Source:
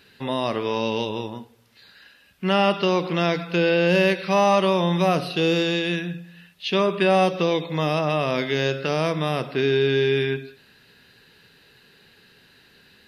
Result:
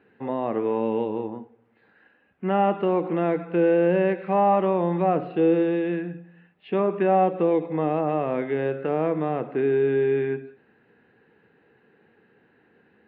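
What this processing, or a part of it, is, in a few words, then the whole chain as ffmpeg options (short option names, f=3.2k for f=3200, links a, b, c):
bass cabinet: -af "highpass=80,equalizer=f=220:t=q:w=4:g=6,equalizer=f=320:t=q:w=4:g=9,equalizer=f=470:t=q:w=4:g=8,equalizer=f=780:t=q:w=4:g=8,lowpass=f=2.1k:w=0.5412,lowpass=f=2.1k:w=1.3066,volume=-6.5dB"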